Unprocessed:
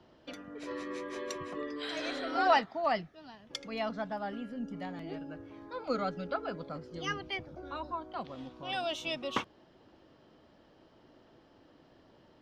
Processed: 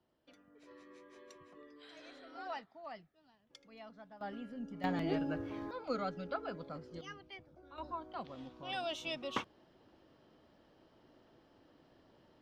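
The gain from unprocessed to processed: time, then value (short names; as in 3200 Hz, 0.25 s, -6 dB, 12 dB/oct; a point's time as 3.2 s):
-18 dB
from 4.21 s -5.5 dB
from 4.84 s +6.5 dB
from 5.71 s -4.5 dB
from 7.01 s -14 dB
from 7.78 s -4.5 dB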